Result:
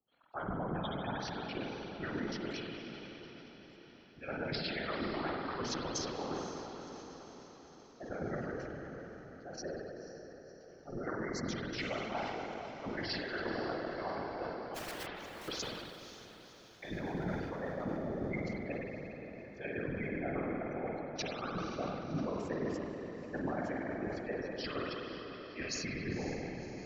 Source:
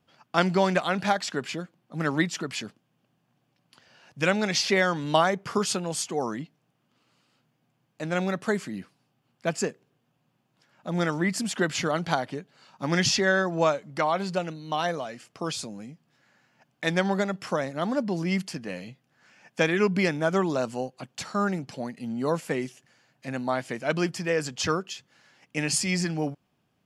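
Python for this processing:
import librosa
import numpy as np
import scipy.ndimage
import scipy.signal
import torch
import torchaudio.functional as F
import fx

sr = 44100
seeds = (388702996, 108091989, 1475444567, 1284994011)

y = fx.freq_compress(x, sr, knee_hz=3400.0, ratio=1.5)
y = fx.spec_gate(y, sr, threshold_db=-15, keep='strong')
y = scipy.signal.sosfilt(scipy.signal.butter(2, 240.0, 'highpass', fs=sr, output='sos'), y)
y = fx.high_shelf(y, sr, hz=6800.0, db=6.0)
y = fx.level_steps(y, sr, step_db=18)
y = fx.overflow_wrap(y, sr, gain_db=36.0, at=(14.74, 15.47), fade=0.02)
y = fx.chopper(y, sr, hz=8.4, depth_pct=60, duty_pct=25)
y = fx.rev_spring(y, sr, rt60_s=3.4, pass_ms=(48,), chirp_ms=50, drr_db=-2.0)
y = fx.whisperise(y, sr, seeds[0])
y = fx.echo_diffused(y, sr, ms=525, feedback_pct=58, wet_db=-12)
y = fx.sustainer(y, sr, db_per_s=32.0)
y = y * librosa.db_to_amplitude(-1.5)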